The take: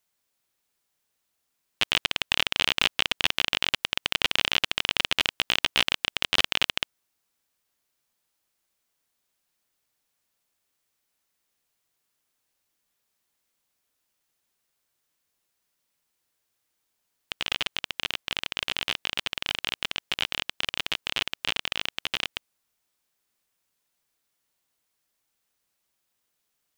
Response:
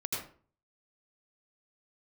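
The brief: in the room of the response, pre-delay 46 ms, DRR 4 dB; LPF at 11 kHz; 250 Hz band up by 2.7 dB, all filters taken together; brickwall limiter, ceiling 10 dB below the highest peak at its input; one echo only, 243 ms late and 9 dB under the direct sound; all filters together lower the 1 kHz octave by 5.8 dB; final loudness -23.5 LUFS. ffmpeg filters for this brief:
-filter_complex "[0:a]lowpass=11000,equalizer=f=250:t=o:g=4,equalizer=f=1000:t=o:g=-8,alimiter=limit=0.178:level=0:latency=1,aecho=1:1:243:0.355,asplit=2[s0][s1];[1:a]atrim=start_sample=2205,adelay=46[s2];[s1][s2]afir=irnorm=-1:irlink=0,volume=0.422[s3];[s0][s3]amix=inputs=2:normalize=0,volume=3.16"

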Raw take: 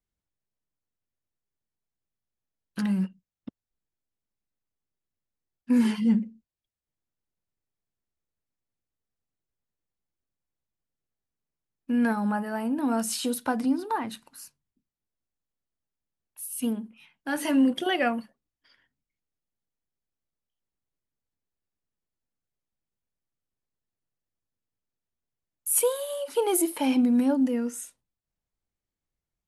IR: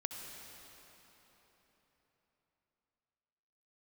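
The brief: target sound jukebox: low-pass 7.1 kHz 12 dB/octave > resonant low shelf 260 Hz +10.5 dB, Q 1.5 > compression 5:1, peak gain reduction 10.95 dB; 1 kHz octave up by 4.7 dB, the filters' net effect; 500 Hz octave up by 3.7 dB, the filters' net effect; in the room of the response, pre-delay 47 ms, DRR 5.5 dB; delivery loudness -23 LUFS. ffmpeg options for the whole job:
-filter_complex "[0:a]equalizer=f=500:t=o:g=5.5,equalizer=f=1000:t=o:g=5,asplit=2[s0][s1];[1:a]atrim=start_sample=2205,adelay=47[s2];[s1][s2]afir=irnorm=-1:irlink=0,volume=0.531[s3];[s0][s3]amix=inputs=2:normalize=0,lowpass=7100,lowshelf=f=260:t=q:w=1.5:g=10.5,acompressor=threshold=0.1:ratio=5,volume=1.41"

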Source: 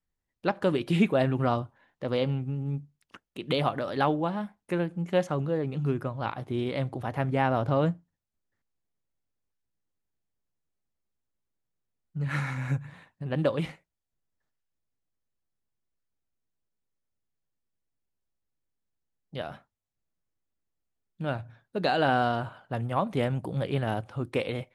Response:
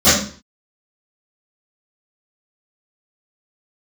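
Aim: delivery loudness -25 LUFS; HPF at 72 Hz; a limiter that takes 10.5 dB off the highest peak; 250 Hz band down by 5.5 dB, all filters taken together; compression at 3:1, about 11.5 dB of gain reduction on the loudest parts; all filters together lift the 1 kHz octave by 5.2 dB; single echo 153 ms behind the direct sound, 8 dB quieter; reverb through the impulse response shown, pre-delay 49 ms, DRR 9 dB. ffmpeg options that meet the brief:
-filter_complex "[0:a]highpass=72,equalizer=f=250:t=o:g=-8.5,equalizer=f=1000:t=o:g=8,acompressor=threshold=0.0224:ratio=3,alimiter=level_in=1.41:limit=0.0631:level=0:latency=1,volume=0.708,aecho=1:1:153:0.398,asplit=2[s0][s1];[1:a]atrim=start_sample=2205,adelay=49[s2];[s1][s2]afir=irnorm=-1:irlink=0,volume=0.0178[s3];[s0][s3]amix=inputs=2:normalize=0,volume=4.22"

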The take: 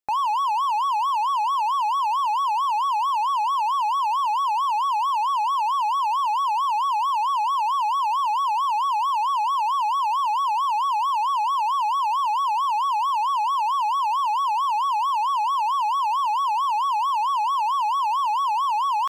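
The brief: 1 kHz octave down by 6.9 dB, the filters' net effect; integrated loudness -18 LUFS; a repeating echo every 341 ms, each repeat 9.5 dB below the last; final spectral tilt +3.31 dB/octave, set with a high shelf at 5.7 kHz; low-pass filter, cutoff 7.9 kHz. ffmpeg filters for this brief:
-af "lowpass=7900,equalizer=f=1000:t=o:g=-7.5,highshelf=f=5700:g=-4,aecho=1:1:341|682|1023|1364:0.335|0.111|0.0365|0.012,volume=3.35"

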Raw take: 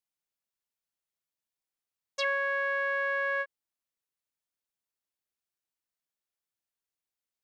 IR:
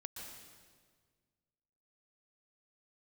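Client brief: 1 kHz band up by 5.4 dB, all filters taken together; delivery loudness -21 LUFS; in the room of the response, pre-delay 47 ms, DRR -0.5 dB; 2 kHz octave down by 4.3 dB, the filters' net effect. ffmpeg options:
-filter_complex "[0:a]equalizer=f=1000:t=o:g=8.5,equalizer=f=2000:t=o:g=-9,asplit=2[s0][s1];[1:a]atrim=start_sample=2205,adelay=47[s2];[s1][s2]afir=irnorm=-1:irlink=0,volume=1.5[s3];[s0][s3]amix=inputs=2:normalize=0,volume=1.26"

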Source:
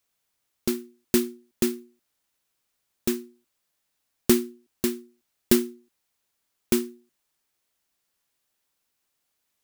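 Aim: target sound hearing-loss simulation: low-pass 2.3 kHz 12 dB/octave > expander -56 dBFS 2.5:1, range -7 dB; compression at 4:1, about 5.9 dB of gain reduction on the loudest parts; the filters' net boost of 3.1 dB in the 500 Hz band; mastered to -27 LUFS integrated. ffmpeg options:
-af "equalizer=f=500:t=o:g=5.5,acompressor=threshold=0.112:ratio=4,lowpass=2300,agate=range=0.447:threshold=0.00158:ratio=2.5,volume=1.58"

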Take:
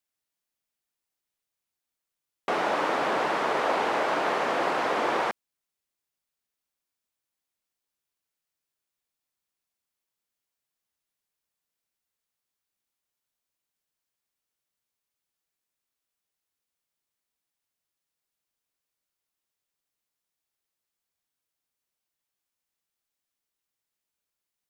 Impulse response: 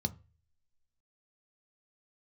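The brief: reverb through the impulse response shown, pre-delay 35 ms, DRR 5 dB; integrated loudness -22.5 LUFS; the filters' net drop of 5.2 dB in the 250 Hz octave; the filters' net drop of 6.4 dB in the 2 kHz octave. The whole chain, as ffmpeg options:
-filter_complex "[0:a]equalizer=f=250:t=o:g=-7.5,equalizer=f=2000:t=o:g=-8.5,asplit=2[s0][s1];[1:a]atrim=start_sample=2205,adelay=35[s2];[s1][s2]afir=irnorm=-1:irlink=0,volume=0.447[s3];[s0][s3]amix=inputs=2:normalize=0,volume=1.68"

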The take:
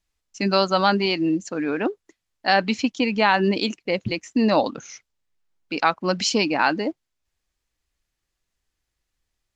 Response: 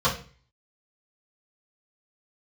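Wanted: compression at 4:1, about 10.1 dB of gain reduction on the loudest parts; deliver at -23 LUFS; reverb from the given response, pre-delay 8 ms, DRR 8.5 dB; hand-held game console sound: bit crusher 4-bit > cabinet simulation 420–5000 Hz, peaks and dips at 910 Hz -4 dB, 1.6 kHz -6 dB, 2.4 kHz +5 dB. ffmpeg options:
-filter_complex "[0:a]acompressor=threshold=0.0501:ratio=4,asplit=2[s0][s1];[1:a]atrim=start_sample=2205,adelay=8[s2];[s1][s2]afir=irnorm=-1:irlink=0,volume=0.0631[s3];[s0][s3]amix=inputs=2:normalize=0,acrusher=bits=3:mix=0:aa=0.000001,highpass=420,equalizer=f=910:t=q:w=4:g=-4,equalizer=f=1600:t=q:w=4:g=-6,equalizer=f=2400:t=q:w=4:g=5,lowpass=f=5000:w=0.5412,lowpass=f=5000:w=1.3066,volume=2.37"

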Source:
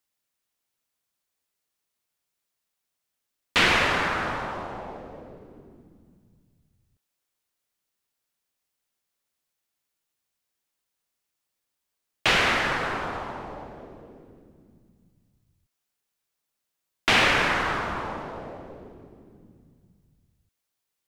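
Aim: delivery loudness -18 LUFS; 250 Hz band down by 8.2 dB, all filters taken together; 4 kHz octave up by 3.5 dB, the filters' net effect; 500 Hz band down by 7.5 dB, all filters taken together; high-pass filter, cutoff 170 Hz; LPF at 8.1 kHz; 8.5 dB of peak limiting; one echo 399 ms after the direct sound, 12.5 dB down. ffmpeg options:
-af "highpass=170,lowpass=8100,equalizer=f=250:t=o:g=-7,equalizer=f=500:t=o:g=-8,equalizer=f=4000:t=o:g=5,alimiter=limit=0.168:level=0:latency=1,aecho=1:1:399:0.237,volume=2.66"

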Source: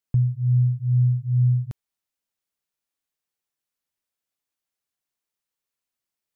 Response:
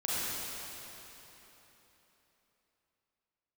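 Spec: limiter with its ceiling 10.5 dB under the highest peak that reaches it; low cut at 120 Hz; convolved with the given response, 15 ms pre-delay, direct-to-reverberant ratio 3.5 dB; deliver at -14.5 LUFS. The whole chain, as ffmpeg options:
-filter_complex "[0:a]highpass=120,alimiter=level_in=1.41:limit=0.0631:level=0:latency=1,volume=0.708,asplit=2[s0][s1];[1:a]atrim=start_sample=2205,adelay=15[s2];[s1][s2]afir=irnorm=-1:irlink=0,volume=0.266[s3];[s0][s3]amix=inputs=2:normalize=0,volume=6.68"

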